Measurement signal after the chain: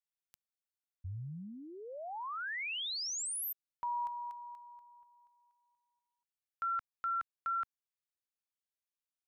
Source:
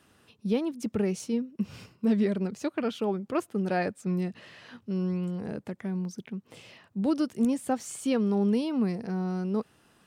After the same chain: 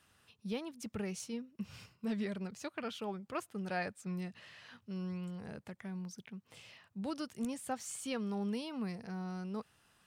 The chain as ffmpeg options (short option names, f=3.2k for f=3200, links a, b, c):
-af "equalizer=f=320:w=0.64:g=-10.5,volume=-4dB"